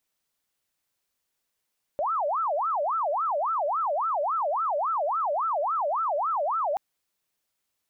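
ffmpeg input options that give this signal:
-f lavfi -i "aevalsrc='0.0668*sin(2*PI*(954*t-386/(2*PI*3.6)*sin(2*PI*3.6*t)))':d=4.78:s=44100"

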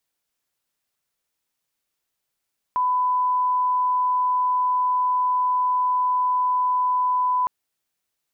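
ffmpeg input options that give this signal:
-f lavfi -i "sine=f=1000:d=4.71:r=44100,volume=0.06dB"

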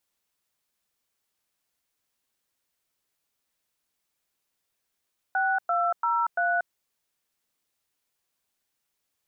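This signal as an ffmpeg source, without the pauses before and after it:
-f lavfi -i "aevalsrc='0.0596*clip(min(mod(t,0.341),0.235-mod(t,0.341))/0.002,0,1)*(eq(floor(t/0.341),0)*(sin(2*PI*770*mod(t,0.341))+sin(2*PI*1477*mod(t,0.341)))+eq(floor(t/0.341),1)*(sin(2*PI*697*mod(t,0.341))+sin(2*PI*1336*mod(t,0.341)))+eq(floor(t/0.341),2)*(sin(2*PI*941*mod(t,0.341))+sin(2*PI*1336*mod(t,0.341)))+eq(floor(t/0.341),3)*(sin(2*PI*697*mod(t,0.341))+sin(2*PI*1477*mod(t,0.341))))':d=1.364:s=44100"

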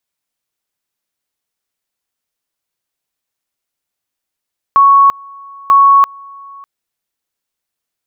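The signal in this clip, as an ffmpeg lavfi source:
-f lavfi -i "aevalsrc='pow(10,(-3.5-27*gte(mod(t,0.94),0.34))/20)*sin(2*PI*1110*t)':d=1.88:s=44100"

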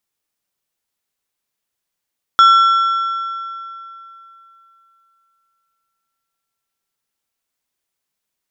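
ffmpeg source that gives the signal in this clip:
-f lavfi -i "aevalsrc='0.596*pow(10,-3*t/3.13)*sin(2*PI*1350*t)+0.168*pow(10,-3*t/2.378)*sin(2*PI*3375*t)+0.0473*pow(10,-3*t/2.065)*sin(2*PI*5400*t)+0.0133*pow(10,-3*t/1.931)*sin(2*PI*6750*t)+0.00376*pow(10,-3*t/1.785)*sin(2*PI*8775*t)':d=5.18:s=44100"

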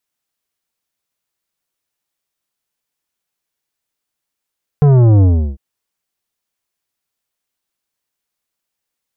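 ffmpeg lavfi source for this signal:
-f lavfi -i "aevalsrc='0.447*clip((0.75-t)/0.35,0,1)*tanh(3.76*sin(2*PI*150*0.75/log(65/150)*(exp(log(65/150)*t/0.75)-1)))/tanh(3.76)':d=0.75:s=44100"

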